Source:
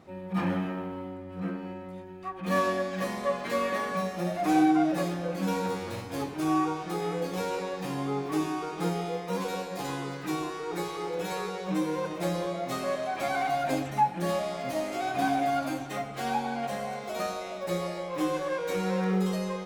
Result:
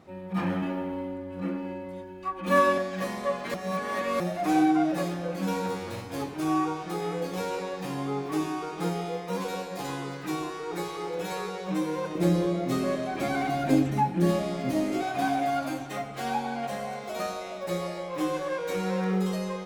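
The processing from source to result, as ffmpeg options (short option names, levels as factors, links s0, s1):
-filter_complex "[0:a]asettb=1/sr,asplit=3[s0][s1][s2];[s0]atrim=end=0.624[s3];[s1]atrim=start=0.62:end=2.78,asetpts=PTS-STARTPTS,afade=t=in:d=0.004:c=qsin,afade=t=out:st=2.156:d=0.004:c=qsin,aecho=1:1:3.5:0.97,atrim=end_sample=95256[s4];[s2]atrim=start=2.776[s5];[s3][s4]acrossfade=d=0.004:c1=hsin:c2=qsin[s6];[s6][s5]acrossfade=d=0.004:c1=qsin:c2=hsin,asettb=1/sr,asplit=3[s7][s8][s9];[s7]atrim=end=12.154[s10];[s8]atrim=start=12.15:end=15.03,asetpts=PTS-STARTPTS,afade=t=in:d=0.004:c=qsin,afade=t=out:st=2.876:d=0.004:c=qsin,lowshelf=f=480:t=q:w=1.5:g=8[s11];[s9]atrim=start=15.026[s12];[s10][s11]acrossfade=d=0.004:c1=hsin:c2=qsin[s13];[s13][s12]acrossfade=d=0.004:c1=qsin:c2=hsin,asplit=3[s14][s15][s16];[s14]atrim=end=3.542[s17];[s15]atrim=start=3.538:end=4.202,asetpts=PTS-STARTPTS,areverse[s18];[s16]atrim=start=4.198[s19];[s17][s18]acrossfade=d=0.004:c1=hsin:c2=hsin[s20];[s20][s19]acrossfade=d=0.004:c1=hsin:c2=hsin"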